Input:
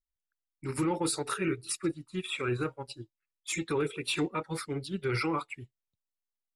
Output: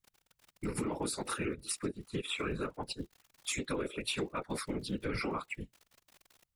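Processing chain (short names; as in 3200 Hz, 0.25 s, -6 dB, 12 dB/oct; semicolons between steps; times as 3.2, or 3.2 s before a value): crackle 41/s -46 dBFS; whisperiser; compressor 4:1, threshold -40 dBFS, peak gain reduction 13.5 dB; gain +5.5 dB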